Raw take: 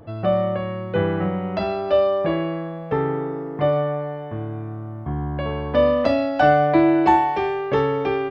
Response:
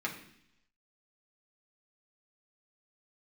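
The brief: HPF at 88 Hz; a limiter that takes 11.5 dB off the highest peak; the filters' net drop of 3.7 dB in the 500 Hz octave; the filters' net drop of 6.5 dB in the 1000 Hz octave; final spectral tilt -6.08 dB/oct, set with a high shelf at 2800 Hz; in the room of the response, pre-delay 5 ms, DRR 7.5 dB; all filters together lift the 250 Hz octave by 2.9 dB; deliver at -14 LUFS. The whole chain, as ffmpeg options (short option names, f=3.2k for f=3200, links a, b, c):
-filter_complex "[0:a]highpass=88,equalizer=f=250:t=o:g=7,equalizer=f=500:t=o:g=-4.5,equalizer=f=1k:t=o:g=-8,highshelf=f=2.8k:g=3.5,alimiter=limit=-15.5dB:level=0:latency=1,asplit=2[a][b];[1:a]atrim=start_sample=2205,adelay=5[c];[b][c]afir=irnorm=-1:irlink=0,volume=-12dB[d];[a][d]amix=inputs=2:normalize=0,volume=11.5dB"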